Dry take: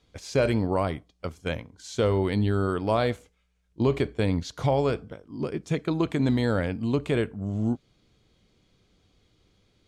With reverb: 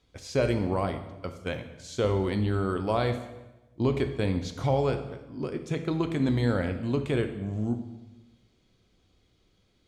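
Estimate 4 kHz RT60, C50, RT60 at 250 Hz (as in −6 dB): 0.90 s, 10.0 dB, 1.2 s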